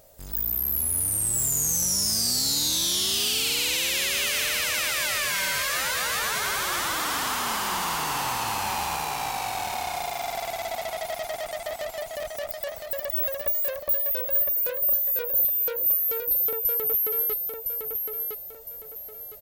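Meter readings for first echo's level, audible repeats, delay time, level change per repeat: -5.0 dB, 4, 1.01 s, -9.5 dB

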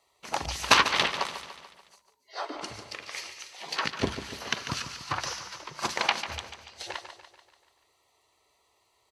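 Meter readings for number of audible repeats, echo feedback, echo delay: 5, 54%, 0.145 s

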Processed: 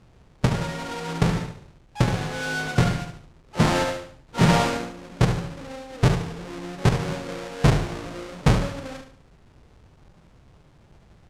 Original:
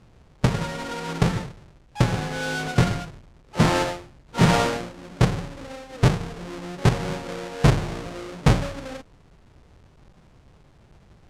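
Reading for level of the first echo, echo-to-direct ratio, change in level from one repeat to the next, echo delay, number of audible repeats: -8.5 dB, -8.0 dB, -9.0 dB, 72 ms, 3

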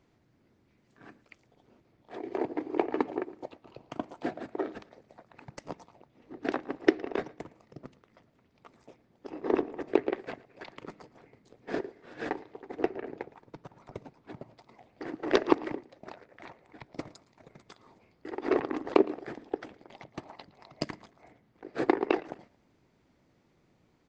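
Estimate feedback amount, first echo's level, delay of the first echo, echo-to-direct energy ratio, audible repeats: 34%, -21.5 dB, 0.113 s, -21.0 dB, 2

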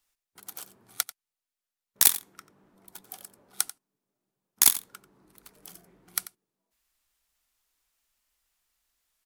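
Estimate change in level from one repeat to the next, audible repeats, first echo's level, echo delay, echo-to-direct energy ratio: no steady repeat, 1, -15.5 dB, 90 ms, -15.5 dB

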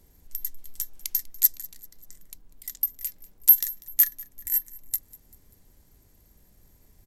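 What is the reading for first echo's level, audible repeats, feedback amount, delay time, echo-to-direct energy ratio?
-22.0 dB, 3, 49%, 0.195 s, -21.0 dB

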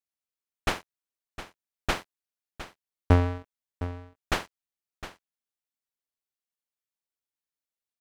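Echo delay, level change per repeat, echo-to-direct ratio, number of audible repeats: 0.71 s, no steady repeat, -13.5 dB, 1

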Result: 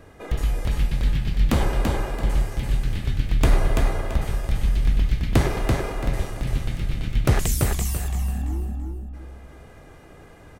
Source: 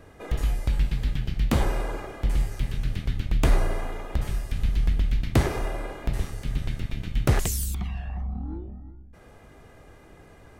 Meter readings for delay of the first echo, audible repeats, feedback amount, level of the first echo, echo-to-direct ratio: 0.336 s, 3, 29%, -3.5 dB, -3.0 dB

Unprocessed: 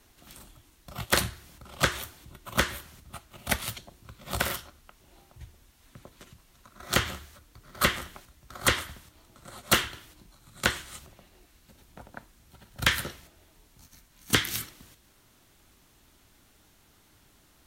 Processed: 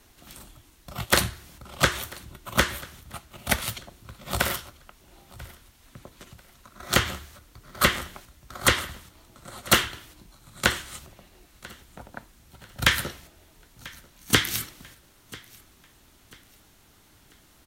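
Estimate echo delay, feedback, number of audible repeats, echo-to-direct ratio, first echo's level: 0.991 s, 36%, 2, -21.5 dB, -22.0 dB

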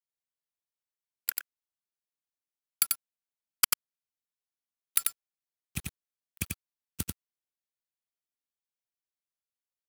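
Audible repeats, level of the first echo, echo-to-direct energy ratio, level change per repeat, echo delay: 1, -3.5 dB, -3.5 dB, no steady repeat, 91 ms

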